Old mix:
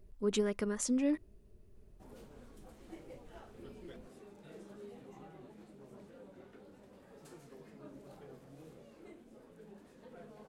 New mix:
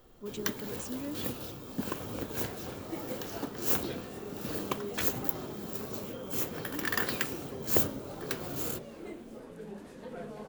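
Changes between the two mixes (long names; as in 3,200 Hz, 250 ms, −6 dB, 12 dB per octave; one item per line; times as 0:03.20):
speech −8.0 dB
first sound: unmuted
second sound +11.0 dB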